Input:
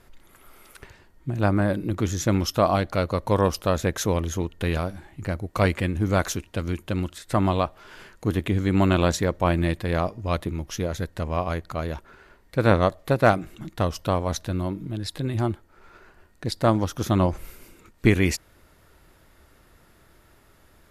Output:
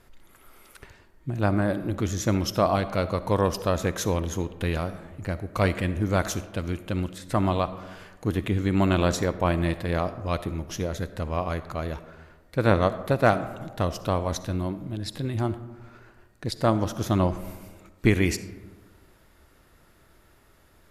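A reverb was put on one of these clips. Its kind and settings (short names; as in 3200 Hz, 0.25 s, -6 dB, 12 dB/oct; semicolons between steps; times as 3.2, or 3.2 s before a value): digital reverb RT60 1.4 s, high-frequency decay 0.4×, pre-delay 20 ms, DRR 13 dB; gain -2 dB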